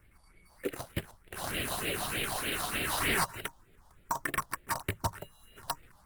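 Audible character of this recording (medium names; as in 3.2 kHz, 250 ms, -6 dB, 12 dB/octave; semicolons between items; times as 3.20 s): aliases and images of a low sample rate 6.8 kHz, jitter 0%; phasing stages 4, 3.3 Hz, lowest notch 370–1000 Hz; Opus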